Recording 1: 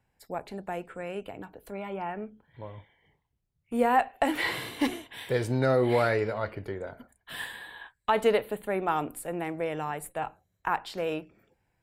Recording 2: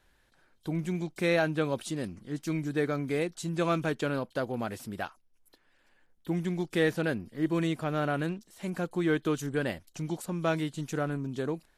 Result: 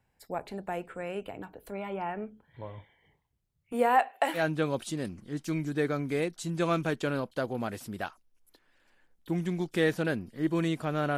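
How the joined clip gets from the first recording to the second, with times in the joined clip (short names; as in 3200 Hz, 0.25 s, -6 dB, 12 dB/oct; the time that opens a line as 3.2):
recording 1
3.72–4.43 HPF 250 Hz -> 620 Hz
4.38 switch to recording 2 from 1.37 s, crossfade 0.10 s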